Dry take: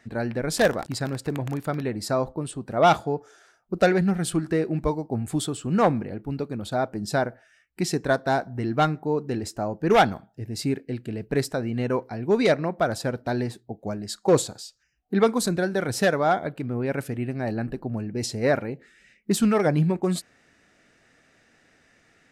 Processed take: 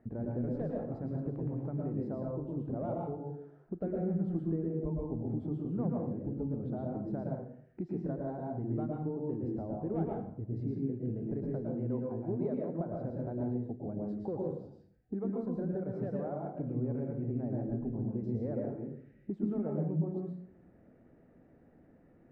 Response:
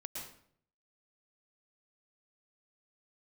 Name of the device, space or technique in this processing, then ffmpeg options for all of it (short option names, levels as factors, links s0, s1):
television next door: -filter_complex "[0:a]acompressor=threshold=0.0126:ratio=4,lowpass=520[s0];[1:a]atrim=start_sample=2205[s1];[s0][s1]afir=irnorm=-1:irlink=0,volume=2"